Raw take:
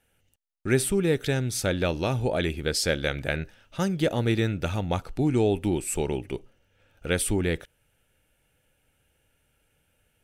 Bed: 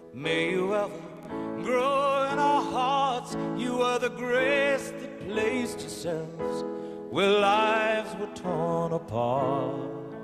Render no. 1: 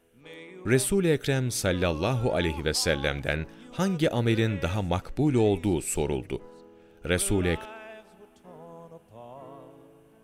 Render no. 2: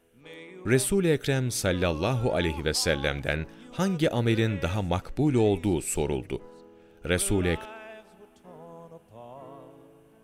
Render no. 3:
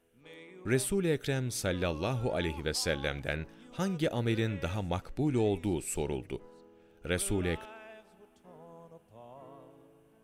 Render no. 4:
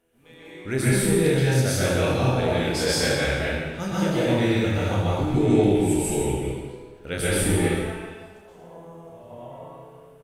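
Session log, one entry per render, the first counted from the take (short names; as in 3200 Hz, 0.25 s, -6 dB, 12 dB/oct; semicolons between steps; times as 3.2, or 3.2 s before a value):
add bed -18.5 dB
nothing audible
gain -6 dB
on a send: reverse bouncing-ball echo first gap 30 ms, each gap 1.5×, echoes 5; on the sum: plate-style reverb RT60 1.2 s, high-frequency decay 0.8×, pre-delay 0.11 s, DRR -7 dB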